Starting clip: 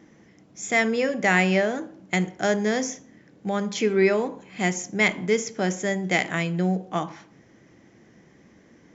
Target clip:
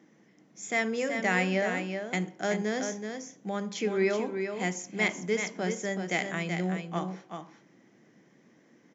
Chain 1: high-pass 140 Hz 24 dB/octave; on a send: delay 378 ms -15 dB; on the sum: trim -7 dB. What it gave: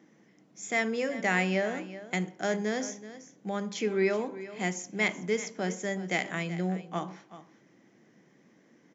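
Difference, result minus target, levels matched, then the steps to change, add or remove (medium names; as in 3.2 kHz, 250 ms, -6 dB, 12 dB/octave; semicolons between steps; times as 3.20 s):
echo-to-direct -8.5 dB
change: delay 378 ms -6.5 dB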